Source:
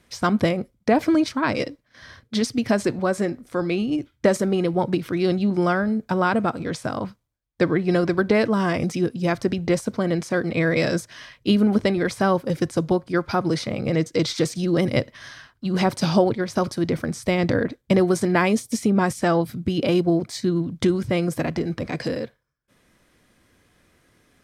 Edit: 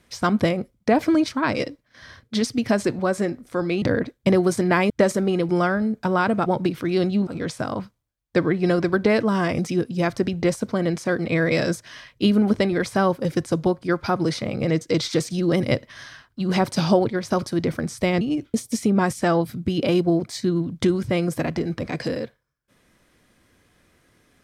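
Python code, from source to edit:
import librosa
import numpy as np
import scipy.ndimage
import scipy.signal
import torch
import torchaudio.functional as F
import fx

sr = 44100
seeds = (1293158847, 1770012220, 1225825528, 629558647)

y = fx.edit(x, sr, fx.swap(start_s=3.82, length_s=0.33, other_s=17.46, other_length_s=1.08),
    fx.move(start_s=4.74, length_s=0.81, to_s=6.52), tone=tone)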